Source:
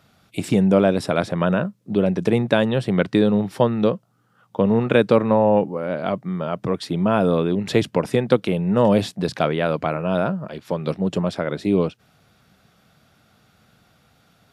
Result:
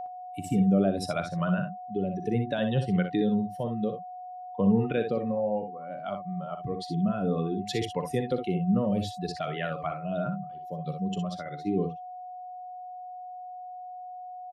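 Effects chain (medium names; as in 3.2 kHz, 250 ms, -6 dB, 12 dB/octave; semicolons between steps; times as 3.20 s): expander on every frequency bin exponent 2; peak limiter -16.5 dBFS, peak gain reduction 10.5 dB; rotary cabinet horn 0.6 Hz; whistle 730 Hz -34 dBFS; early reflections 41 ms -16.5 dB, 61 ms -8 dB, 72 ms -15 dB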